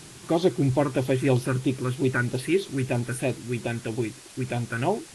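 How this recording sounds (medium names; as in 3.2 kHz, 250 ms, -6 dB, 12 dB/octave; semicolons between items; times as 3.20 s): phasing stages 4, 3.1 Hz, lowest notch 700–1700 Hz; a quantiser's noise floor 8-bit, dither triangular; AAC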